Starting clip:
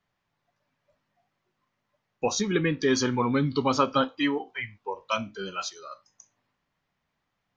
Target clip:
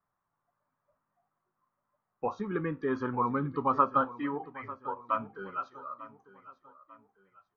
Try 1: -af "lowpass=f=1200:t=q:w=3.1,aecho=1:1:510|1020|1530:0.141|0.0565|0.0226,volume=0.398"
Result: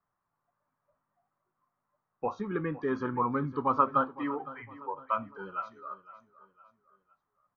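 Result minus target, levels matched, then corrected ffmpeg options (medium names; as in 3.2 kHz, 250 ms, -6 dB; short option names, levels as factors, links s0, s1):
echo 386 ms early
-af "lowpass=f=1200:t=q:w=3.1,aecho=1:1:896|1792|2688:0.141|0.0565|0.0226,volume=0.398"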